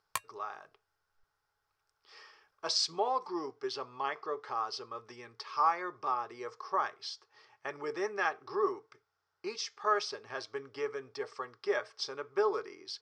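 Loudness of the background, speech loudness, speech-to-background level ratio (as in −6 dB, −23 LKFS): −41.0 LKFS, −35.5 LKFS, 5.5 dB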